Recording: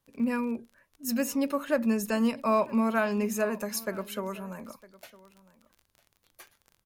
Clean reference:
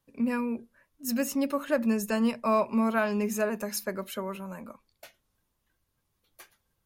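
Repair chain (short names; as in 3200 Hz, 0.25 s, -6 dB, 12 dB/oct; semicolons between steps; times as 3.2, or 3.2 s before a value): de-click; inverse comb 0.957 s -21 dB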